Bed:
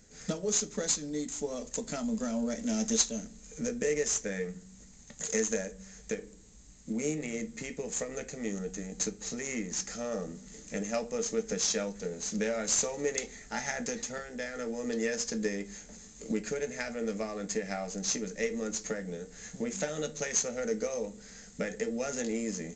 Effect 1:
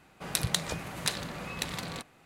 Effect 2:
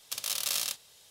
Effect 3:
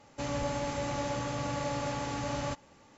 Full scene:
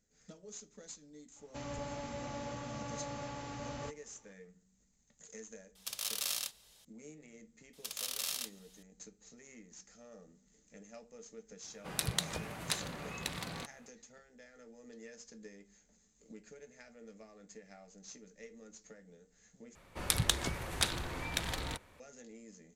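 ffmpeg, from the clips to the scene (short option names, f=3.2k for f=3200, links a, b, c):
-filter_complex "[2:a]asplit=2[a][b];[1:a]asplit=2[c][d];[0:a]volume=-20dB[e];[d]afreqshift=-230[f];[e]asplit=2[g][h];[g]atrim=end=19.754[i];[f]atrim=end=2.25,asetpts=PTS-STARTPTS,volume=-1dB[j];[h]atrim=start=21.996[k];[3:a]atrim=end=2.97,asetpts=PTS-STARTPTS,volume=-9dB,afade=t=in:d=0.004:c=hsin,afade=t=out:st=2.966:d=0.004:c=hsin,adelay=1360[l];[a]atrim=end=1.1,asetpts=PTS-STARTPTS,volume=-5.5dB,afade=t=in:d=0.004:c=hsin,afade=t=out:st=1.096:d=0.004:c=hsin,adelay=5750[m];[b]atrim=end=1.1,asetpts=PTS-STARTPTS,volume=-7dB,afade=t=in:d=0.004:c=hsin,afade=t=out:st=1.096:d=0.004:c=hsin,adelay=7730[n];[c]atrim=end=2.25,asetpts=PTS-STARTPTS,volume=-5dB,afade=t=in:d=0.004:c=hsin,afade=t=out:st=2.246:d=0.004:c=hsin,adelay=11640[o];[i][j]acrossfade=d=0.004:c1=hsin:c2=hsin[p];[p][k]acrossfade=d=0.004:c1=hsin:c2=hsin[q];[q][l][m][n][o]amix=inputs=5:normalize=0"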